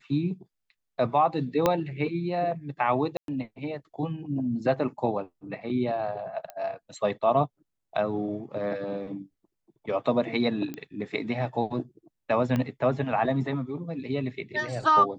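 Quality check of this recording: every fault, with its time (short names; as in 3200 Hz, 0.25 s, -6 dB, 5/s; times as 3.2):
1.66 pop -8 dBFS
3.17–3.28 gap 0.112 s
6.5 pop -24 dBFS
10.74 pop -22 dBFS
12.56 pop -16 dBFS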